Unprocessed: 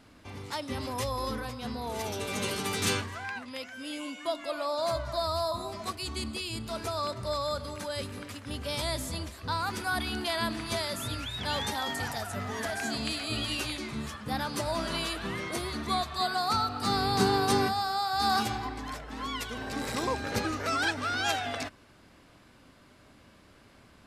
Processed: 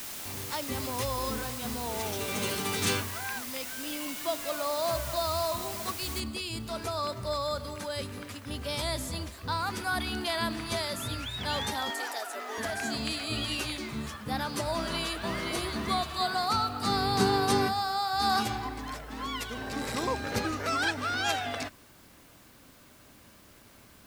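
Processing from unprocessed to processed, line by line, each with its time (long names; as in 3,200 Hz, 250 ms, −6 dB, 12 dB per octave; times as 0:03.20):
0:06.20: noise floor change −40 dB −60 dB
0:11.90–0:12.58: Butterworth high-pass 290 Hz 48 dB per octave
0:14.71–0:15.41: delay throw 520 ms, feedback 45%, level −5 dB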